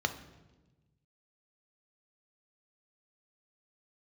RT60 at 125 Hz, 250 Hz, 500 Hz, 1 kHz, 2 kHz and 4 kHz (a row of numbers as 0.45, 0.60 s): 1.9, 1.6, 1.3, 1.0, 0.95, 0.95 s